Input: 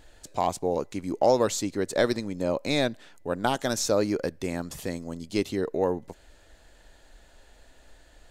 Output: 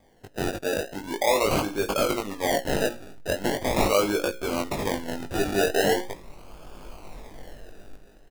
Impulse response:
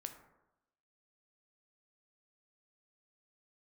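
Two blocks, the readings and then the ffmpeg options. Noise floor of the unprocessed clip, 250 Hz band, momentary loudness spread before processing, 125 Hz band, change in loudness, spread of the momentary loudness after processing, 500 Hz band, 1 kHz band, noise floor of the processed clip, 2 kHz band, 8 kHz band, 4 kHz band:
-56 dBFS, 0.0 dB, 10 LU, +1.0 dB, +2.0 dB, 18 LU, +1.5 dB, +2.0 dB, -53 dBFS, +6.0 dB, +1.5 dB, +3.5 dB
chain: -filter_complex "[0:a]bass=f=250:g=-13,treble=f=4000:g=6,bandreject=f=60:t=h:w=6,bandreject=f=120:t=h:w=6,bandreject=f=180:t=h:w=6,bandreject=f=240:t=h:w=6,bandreject=f=300:t=h:w=6,bandreject=f=360:t=h:w=6,bandreject=f=420:t=h:w=6,bandreject=f=480:t=h:w=6,bandreject=f=540:t=h:w=6,asubboost=boost=6.5:cutoff=50,dynaudnorm=f=240:g=7:m=5.96,alimiter=limit=0.316:level=0:latency=1:release=13,acrusher=samples=32:mix=1:aa=0.000001:lfo=1:lforange=19.2:lforate=0.41,asplit=2[s0][s1];[s1]adelay=20,volume=0.668[s2];[s0][s2]amix=inputs=2:normalize=0,volume=0.631"

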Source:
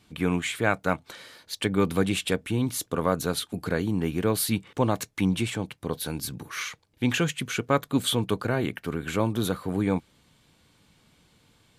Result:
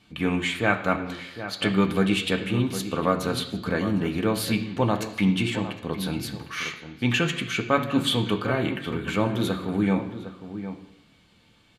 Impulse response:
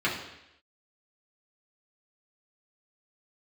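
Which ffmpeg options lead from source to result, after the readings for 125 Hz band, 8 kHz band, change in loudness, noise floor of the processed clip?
+1.5 dB, -4.5 dB, +2.0 dB, -59 dBFS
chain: -filter_complex "[0:a]highshelf=f=7000:g=-10.5,asplit=2[s0][s1];[s1]adelay=758,volume=0.282,highshelf=f=4000:g=-17.1[s2];[s0][s2]amix=inputs=2:normalize=0,asplit=2[s3][s4];[1:a]atrim=start_sample=2205,highshelf=f=2300:g=9.5[s5];[s4][s5]afir=irnorm=-1:irlink=0,volume=0.158[s6];[s3][s6]amix=inputs=2:normalize=0"

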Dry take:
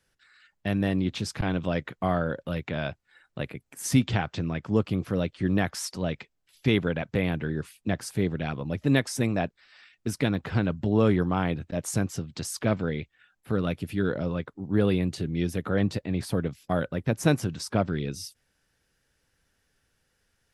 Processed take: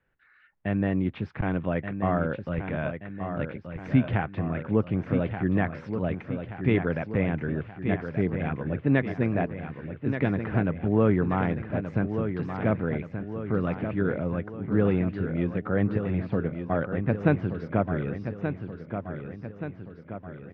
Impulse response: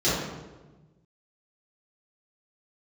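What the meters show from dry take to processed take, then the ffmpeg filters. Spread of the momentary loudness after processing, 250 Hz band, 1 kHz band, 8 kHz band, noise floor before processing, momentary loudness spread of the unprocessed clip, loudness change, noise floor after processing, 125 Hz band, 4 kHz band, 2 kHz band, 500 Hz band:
10 LU, +1.0 dB, +1.0 dB, under -35 dB, -74 dBFS, 10 LU, 0.0 dB, -48 dBFS, +1.0 dB, under -10 dB, 0.0 dB, +1.0 dB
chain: -filter_complex "[0:a]lowpass=f=2300:w=0.5412,lowpass=f=2300:w=1.3066,asplit=2[s0][s1];[s1]aecho=0:1:1178|2356|3534|4712|5890|7068:0.398|0.215|0.116|0.0627|0.0339|0.0183[s2];[s0][s2]amix=inputs=2:normalize=0"

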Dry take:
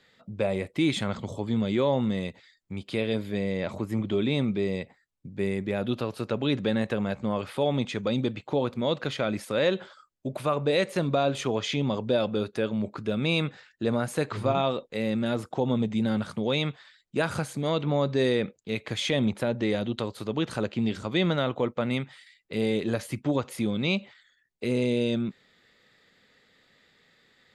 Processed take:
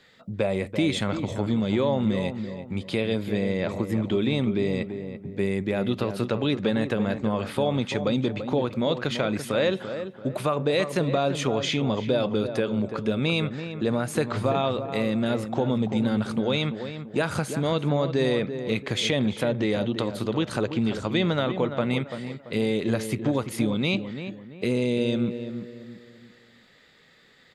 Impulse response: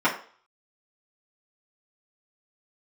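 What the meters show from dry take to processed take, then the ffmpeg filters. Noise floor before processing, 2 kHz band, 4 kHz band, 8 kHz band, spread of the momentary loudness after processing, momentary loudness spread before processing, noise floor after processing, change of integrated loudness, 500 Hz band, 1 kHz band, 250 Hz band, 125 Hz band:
-68 dBFS, +2.0 dB, +2.0 dB, +3.5 dB, 7 LU, 7 LU, -55 dBFS, +2.0 dB, +2.0 dB, +2.0 dB, +2.5 dB, +2.5 dB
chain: -filter_complex "[0:a]acompressor=threshold=0.0398:ratio=2,asplit=2[s0][s1];[s1]adelay=338,lowpass=f=1600:p=1,volume=0.376,asplit=2[s2][s3];[s3]adelay=338,lowpass=f=1600:p=1,volume=0.38,asplit=2[s4][s5];[s5]adelay=338,lowpass=f=1600:p=1,volume=0.38,asplit=2[s6][s7];[s7]adelay=338,lowpass=f=1600:p=1,volume=0.38[s8];[s0][s2][s4][s6][s8]amix=inputs=5:normalize=0,volume=1.78"

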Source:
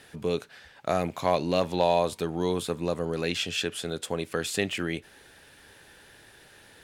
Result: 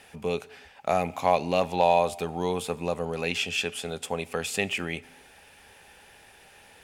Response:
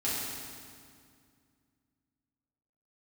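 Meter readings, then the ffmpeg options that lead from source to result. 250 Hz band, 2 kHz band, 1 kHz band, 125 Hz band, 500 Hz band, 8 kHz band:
-2.5 dB, +3.0 dB, +4.0 dB, -1.5 dB, +0.5 dB, 0.0 dB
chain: -filter_complex "[0:a]equalizer=f=125:t=o:w=0.33:g=-11,equalizer=f=315:t=o:w=0.33:g=-9,equalizer=f=800:t=o:w=0.33:g=7,equalizer=f=1600:t=o:w=0.33:g=-4,equalizer=f=2500:t=o:w=0.33:g=6,equalizer=f=4000:t=o:w=0.33:g=-5,asplit=2[s0][s1];[1:a]atrim=start_sample=2205,afade=t=out:st=0.35:d=0.01,atrim=end_sample=15876[s2];[s1][s2]afir=irnorm=-1:irlink=0,volume=0.0422[s3];[s0][s3]amix=inputs=2:normalize=0"

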